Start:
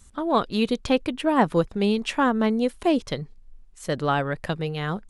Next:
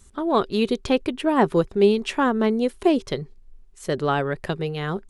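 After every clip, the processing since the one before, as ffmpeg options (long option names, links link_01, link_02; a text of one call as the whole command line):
ffmpeg -i in.wav -af "equalizer=frequency=390:width_type=o:width=0.21:gain=12.5" out.wav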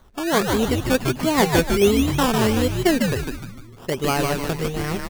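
ffmpeg -i in.wav -filter_complex "[0:a]acrusher=samples=17:mix=1:aa=0.000001:lfo=1:lforange=10.2:lforate=1.4,asplit=7[link_01][link_02][link_03][link_04][link_05][link_06][link_07];[link_02]adelay=151,afreqshift=-130,volume=-3.5dB[link_08];[link_03]adelay=302,afreqshift=-260,volume=-10.4dB[link_09];[link_04]adelay=453,afreqshift=-390,volume=-17.4dB[link_10];[link_05]adelay=604,afreqshift=-520,volume=-24.3dB[link_11];[link_06]adelay=755,afreqshift=-650,volume=-31.2dB[link_12];[link_07]adelay=906,afreqshift=-780,volume=-38.2dB[link_13];[link_01][link_08][link_09][link_10][link_11][link_12][link_13]amix=inputs=7:normalize=0" out.wav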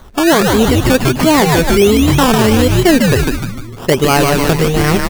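ffmpeg -i in.wav -af "alimiter=level_in=15dB:limit=-1dB:release=50:level=0:latency=1,volume=-1dB" out.wav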